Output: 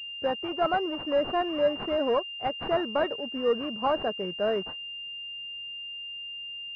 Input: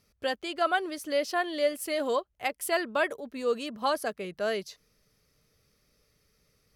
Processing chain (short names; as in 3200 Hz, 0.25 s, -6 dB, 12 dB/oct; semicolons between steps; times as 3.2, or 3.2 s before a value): sample leveller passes 1; pulse-width modulation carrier 2800 Hz